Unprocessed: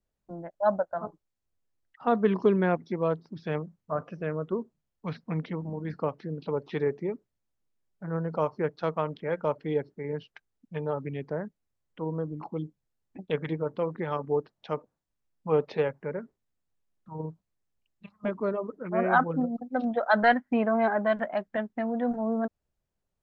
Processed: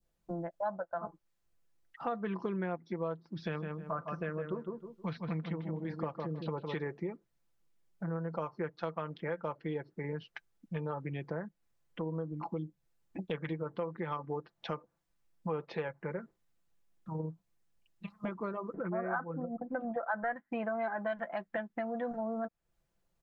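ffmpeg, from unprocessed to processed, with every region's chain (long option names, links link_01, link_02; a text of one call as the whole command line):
ffmpeg -i in.wav -filter_complex "[0:a]asettb=1/sr,asplit=3[link_01][link_02][link_03];[link_01]atrim=end=3.374[link_04];[link_02]atrim=start=3.37:end=6.76,asetpts=PTS-STARTPTS,afade=type=in:duration=0.004:curve=qsin,afade=type=out:start_time=3.386:duration=0.004:curve=qsin,equalizer=frequency=3800:width_type=o:width=1.1:gain=3.5,asplit=2[link_05][link_06];[link_06]adelay=157,lowpass=frequency=1800:poles=1,volume=-6dB,asplit=2[link_07][link_08];[link_08]adelay=157,lowpass=frequency=1800:poles=1,volume=0.21,asplit=2[link_09][link_10];[link_10]adelay=157,lowpass=frequency=1800:poles=1,volume=0.21[link_11];[link_05][link_07][link_09][link_11]amix=inputs=4:normalize=0,atrim=end_sample=149499[link_12];[link_03]atrim=start=6.756[link_13];[link_04][link_12]acrossfade=duration=0.004:curve1=hsin:curve2=qsin[link_14];[link_14][link_13]acrossfade=duration=0.004:curve1=qsin:curve2=hsin,asettb=1/sr,asplit=3[link_15][link_16][link_17];[link_15]atrim=end=18.744[link_18];[link_16]atrim=start=18.74:end=20.36,asetpts=PTS-STARTPTS,afade=type=in:duration=0.004:curve=qsin,afade=type=out:start_time=1.616:duration=0.004:curve=qsin,lowpass=frequency=1800:width=0.5412,lowpass=frequency=1800:width=1.3066,acompressor=mode=upward:threshold=-27dB:ratio=2.5:attack=3.2:release=140:knee=2.83:detection=peak[link_19];[link_17]atrim=start=20.356[link_20];[link_18][link_19]acrossfade=duration=0.004:curve1=hsin:curve2=qsin[link_21];[link_21][link_20]acrossfade=duration=0.004:curve1=qsin:curve2=hsin,adynamicequalizer=threshold=0.01:dfrequency=1500:dqfactor=0.72:tfrequency=1500:tqfactor=0.72:attack=5:release=100:ratio=0.375:range=2.5:mode=boostabove:tftype=bell,aecho=1:1:5.9:0.48,acompressor=threshold=-39dB:ratio=4,volume=3dB" out.wav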